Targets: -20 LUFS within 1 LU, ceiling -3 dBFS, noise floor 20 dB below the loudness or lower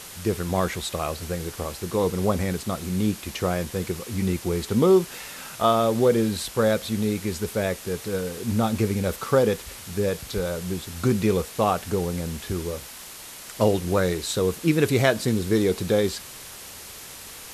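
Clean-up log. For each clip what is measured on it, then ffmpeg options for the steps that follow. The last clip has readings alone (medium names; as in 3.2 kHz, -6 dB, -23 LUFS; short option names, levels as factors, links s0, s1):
noise floor -41 dBFS; noise floor target -45 dBFS; loudness -24.5 LUFS; peak level -5.0 dBFS; loudness target -20.0 LUFS
-> -af "afftdn=nr=6:nf=-41"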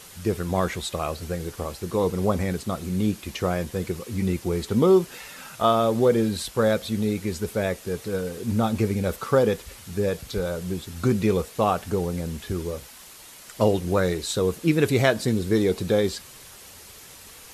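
noise floor -46 dBFS; loudness -25.0 LUFS; peak level -5.5 dBFS; loudness target -20.0 LUFS
-> -af "volume=1.78,alimiter=limit=0.708:level=0:latency=1"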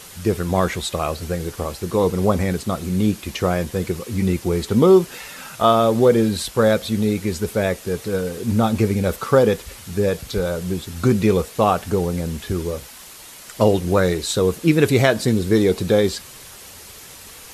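loudness -20.0 LUFS; peak level -3.0 dBFS; noise floor -41 dBFS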